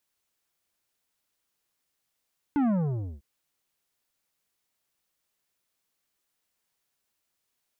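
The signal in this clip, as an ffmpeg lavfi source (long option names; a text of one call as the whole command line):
ffmpeg -f lavfi -i "aevalsrc='0.075*clip((0.65-t)/0.54,0,1)*tanh(3.35*sin(2*PI*300*0.65/log(65/300)*(exp(log(65/300)*t/0.65)-1)))/tanh(3.35)':duration=0.65:sample_rate=44100" out.wav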